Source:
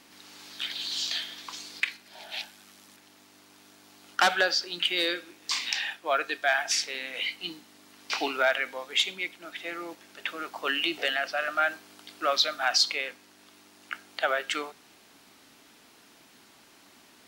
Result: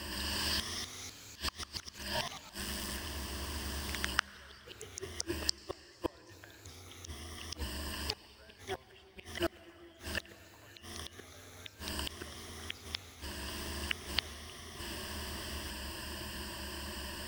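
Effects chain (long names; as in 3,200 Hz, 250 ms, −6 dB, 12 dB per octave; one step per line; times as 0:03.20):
sub-octave generator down 2 octaves, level +4 dB
EQ curve with evenly spaced ripples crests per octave 1.3, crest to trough 14 dB
downward compressor 8 to 1, threshold −31 dBFS, peak gain reduction 16.5 dB
gate with flip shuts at −30 dBFS, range −38 dB
on a send at −17 dB: convolution reverb RT60 5.6 s, pre-delay 83 ms
on the sum: delay with pitch and tempo change per echo 310 ms, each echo +2 semitones, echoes 3, each echo −6 dB
level +10 dB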